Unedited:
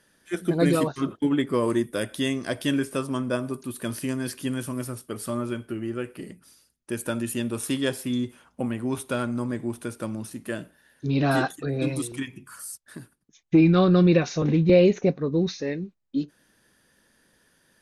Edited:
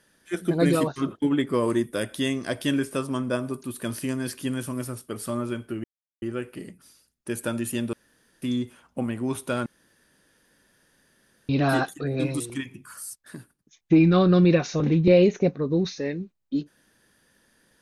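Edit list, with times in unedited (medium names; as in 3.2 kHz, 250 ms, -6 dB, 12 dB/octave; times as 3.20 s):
5.84 s: insert silence 0.38 s
7.55–8.04 s: room tone
9.28–11.11 s: room tone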